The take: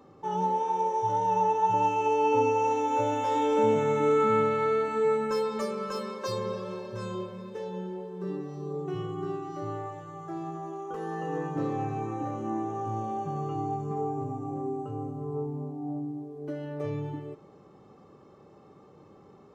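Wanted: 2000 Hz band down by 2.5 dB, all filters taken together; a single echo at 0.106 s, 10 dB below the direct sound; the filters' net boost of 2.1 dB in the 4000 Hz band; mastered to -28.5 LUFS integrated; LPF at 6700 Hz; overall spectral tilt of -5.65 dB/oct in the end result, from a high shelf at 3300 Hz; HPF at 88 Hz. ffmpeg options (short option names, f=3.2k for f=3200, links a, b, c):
-af "highpass=88,lowpass=6.7k,equalizer=f=2k:t=o:g=-4.5,highshelf=f=3.3k:g=-4.5,equalizer=f=4k:t=o:g=8,aecho=1:1:106:0.316,volume=1.5dB"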